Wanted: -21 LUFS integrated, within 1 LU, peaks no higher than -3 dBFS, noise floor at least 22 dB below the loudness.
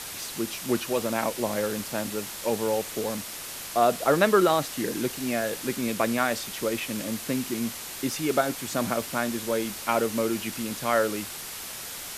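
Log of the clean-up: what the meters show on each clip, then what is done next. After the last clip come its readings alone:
noise floor -38 dBFS; noise floor target -50 dBFS; loudness -27.5 LUFS; peak level -6.5 dBFS; loudness target -21.0 LUFS
-> noise reduction 12 dB, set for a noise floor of -38 dBFS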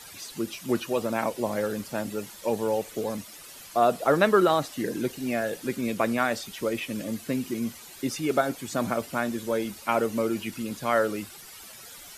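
noise floor -46 dBFS; noise floor target -50 dBFS
-> noise reduction 6 dB, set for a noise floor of -46 dBFS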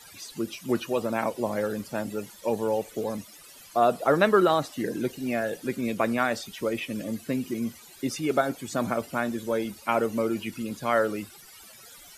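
noise floor -50 dBFS; loudness -28.0 LUFS; peak level -6.5 dBFS; loudness target -21.0 LUFS
-> trim +7 dB; peak limiter -3 dBFS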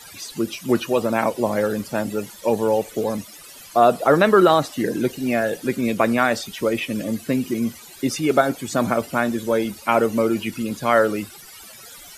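loudness -21.0 LUFS; peak level -3.0 dBFS; noise floor -43 dBFS

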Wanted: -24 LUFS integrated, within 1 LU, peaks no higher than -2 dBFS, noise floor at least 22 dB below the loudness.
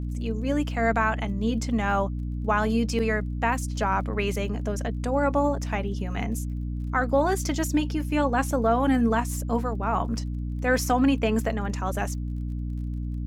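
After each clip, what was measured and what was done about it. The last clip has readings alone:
tick rate 25 per s; hum 60 Hz; highest harmonic 300 Hz; hum level -28 dBFS; loudness -26.0 LUFS; peak level -10.0 dBFS; loudness target -24.0 LUFS
-> de-click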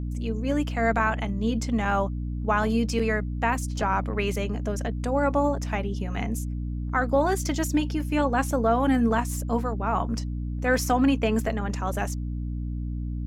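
tick rate 0.075 per s; hum 60 Hz; highest harmonic 300 Hz; hum level -28 dBFS
-> hum notches 60/120/180/240/300 Hz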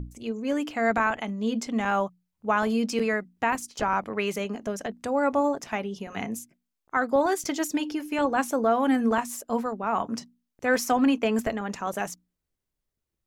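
hum not found; loudness -27.0 LUFS; peak level -11.0 dBFS; loudness target -24.0 LUFS
-> trim +3 dB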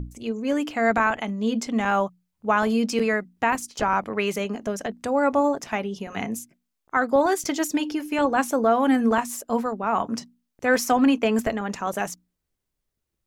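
loudness -24.0 LUFS; peak level -8.0 dBFS; noise floor -80 dBFS

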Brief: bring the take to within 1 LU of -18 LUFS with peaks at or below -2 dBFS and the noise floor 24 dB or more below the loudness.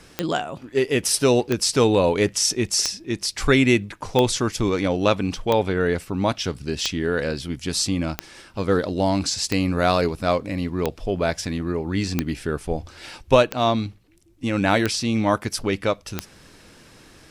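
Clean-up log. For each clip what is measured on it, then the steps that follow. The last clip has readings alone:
clicks found 13; loudness -22.5 LUFS; peak level -3.0 dBFS; loudness target -18.0 LUFS
-> de-click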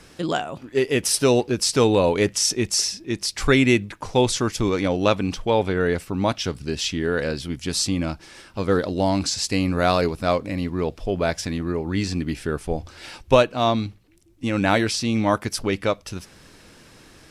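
clicks found 0; loudness -22.5 LUFS; peak level -3.0 dBFS; loudness target -18.0 LUFS
-> trim +4.5 dB; peak limiter -2 dBFS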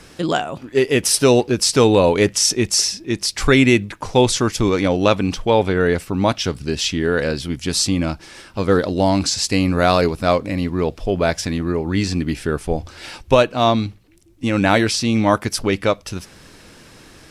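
loudness -18.0 LUFS; peak level -2.0 dBFS; noise floor -46 dBFS

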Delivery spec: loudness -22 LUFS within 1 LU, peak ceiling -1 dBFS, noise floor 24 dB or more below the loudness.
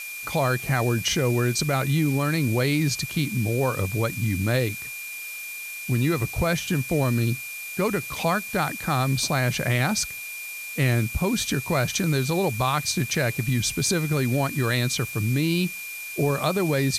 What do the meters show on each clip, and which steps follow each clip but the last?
steady tone 2.4 kHz; tone level -34 dBFS; noise floor -36 dBFS; noise floor target -49 dBFS; loudness -24.5 LUFS; peak level -10.5 dBFS; loudness target -22.0 LUFS
-> band-stop 2.4 kHz, Q 30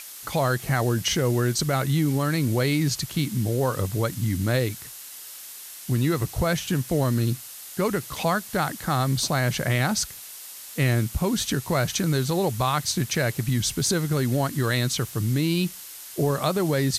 steady tone not found; noise floor -41 dBFS; noise floor target -49 dBFS
-> noise print and reduce 8 dB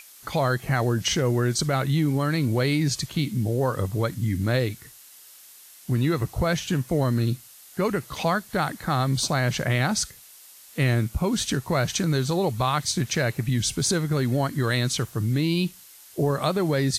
noise floor -49 dBFS; loudness -24.5 LUFS; peak level -11.0 dBFS; loudness target -22.0 LUFS
-> trim +2.5 dB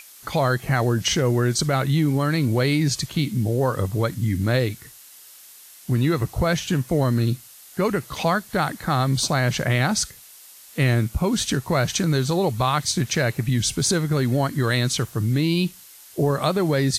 loudness -22.0 LUFS; peak level -8.5 dBFS; noise floor -46 dBFS

